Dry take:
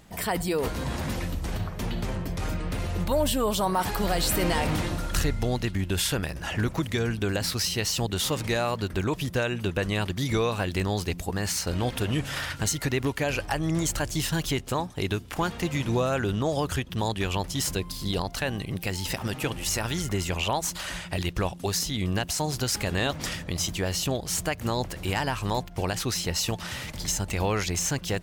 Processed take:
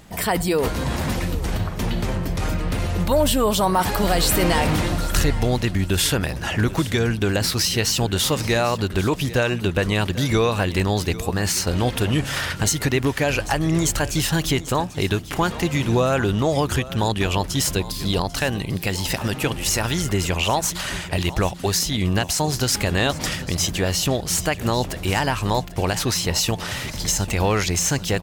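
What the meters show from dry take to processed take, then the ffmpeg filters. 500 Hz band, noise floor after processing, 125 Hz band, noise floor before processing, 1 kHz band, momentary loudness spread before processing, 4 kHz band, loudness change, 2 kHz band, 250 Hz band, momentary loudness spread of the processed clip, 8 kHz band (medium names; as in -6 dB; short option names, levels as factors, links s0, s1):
+6.5 dB, -32 dBFS, +6.5 dB, -40 dBFS, +6.5 dB, 5 LU, +6.5 dB, +6.5 dB, +6.5 dB, +6.5 dB, 5 LU, +6.5 dB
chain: -af "acontrast=63,aecho=1:1:793|1586|2379:0.15|0.0389|0.0101"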